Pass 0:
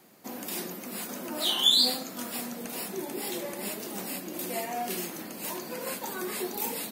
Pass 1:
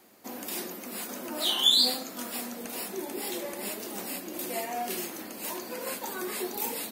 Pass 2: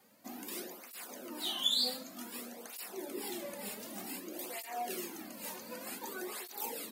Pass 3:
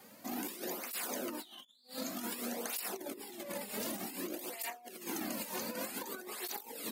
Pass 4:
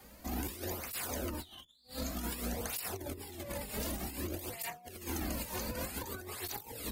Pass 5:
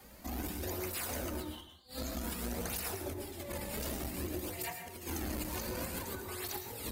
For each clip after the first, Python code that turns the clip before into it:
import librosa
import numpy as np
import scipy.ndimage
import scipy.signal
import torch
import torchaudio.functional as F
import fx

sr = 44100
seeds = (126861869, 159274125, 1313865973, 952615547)

y1 = fx.peak_eq(x, sr, hz=160.0, db=-12.0, octaves=0.39)
y2 = fx.rider(y1, sr, range_db=3, speed_s=2.0)
y2 = fx.flanger_cancel(y2, sr, hz=0.54, depth_ms=3.1)
y2 = y2 * librosa.db_to_amplitude(-7.0)
y3 = fx.over_compress(y2, sr, threshold_db=-46.0, ratio=-0.5)
y3 = y3 * librosa.db_to_amplitude(4.0)
y4 = fx.octave_divider(y3, sr, octaves=2, level_db=3.0)
y5 = fx.rev_plate(y4, sr, seeds[0], rt60_s=0.61, hf_ratio=0.6, predelay_ms=95, drr_db=5.0)
y5 = fx.transformer_sat(y5, sr, knee_hz=290.0)